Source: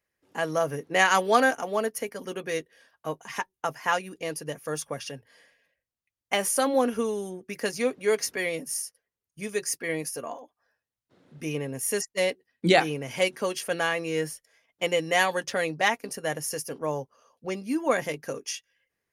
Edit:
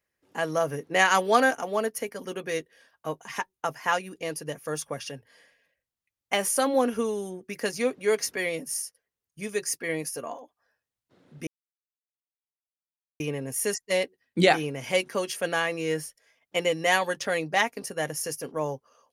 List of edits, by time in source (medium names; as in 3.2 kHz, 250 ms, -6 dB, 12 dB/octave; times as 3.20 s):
11.47 s: insert silence 1.73 s